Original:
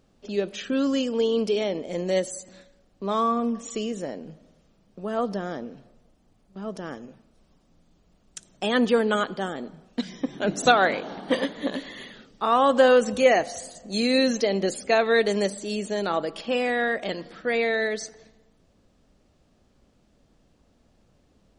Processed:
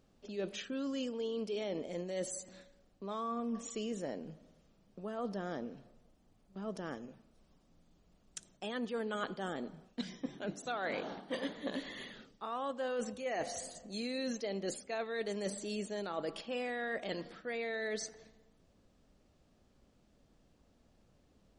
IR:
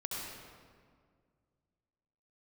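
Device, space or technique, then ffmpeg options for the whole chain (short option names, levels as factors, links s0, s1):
compression on the reversed sound: -af "areverse,acompressor=threshold=0.0398:ratio=20,areverse,volume=0.501"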